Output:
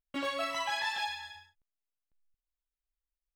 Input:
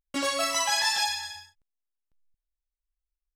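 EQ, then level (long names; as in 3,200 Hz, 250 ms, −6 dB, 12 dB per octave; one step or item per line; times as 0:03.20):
flat-topped bell 7,900 Hz −14 dB
−5.5 dB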